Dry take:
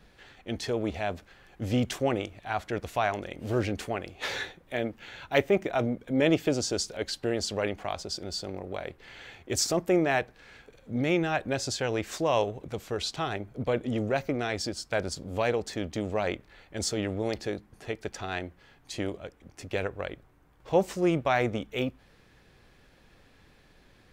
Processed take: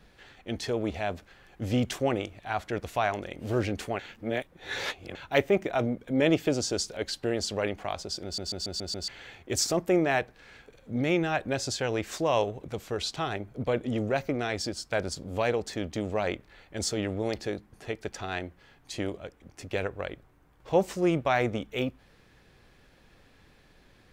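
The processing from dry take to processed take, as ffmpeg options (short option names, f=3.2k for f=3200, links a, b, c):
-filter_complex "[0:a]asplit=9[a][b][c][d][e][f][g][h][i];[a]atrim=end=3.992[j];[b]atrim=start=3.988:end=5.152,asetpts=PTS-STARTPTS,areverse[k];[c]atrim=start=5.148:end=8.382[l];[d]atrim=start=8.238:end=8.382[m];[e]atrim=start=8.238:end=8.382[n];[f]atrim=start=8.238:end=8.382[o];[g]atrim=start=8.238:end=8.382[p];[h]atrim=start=8.238:end=8.382[q];[i]atrim=start=9.078[r];[j][k]acrossfade=d=0.004:c1=hsin:c2=hsin[s];[s][l]acrossfade=d=0.004:c1=hsin:c2=hsin[t];[t][m]acrossfade=d=0.004:c1=hsin:c2=hsin[u];[u][n]acrossfade=d=0.004:c1=hsin:c2=hsin[v];[v][o]acrossfade=d=0.004:c1=hsin:c2=hsin[w];[w][p]acrossfade=d=0.004:c1=hsin:c2=hsin[x];[x][q]acrossfade=d=0.004:c1=hsin:c2=hsin[y];[y][r]acrossfade=d=0.004:c1=hsin:c2=hsin"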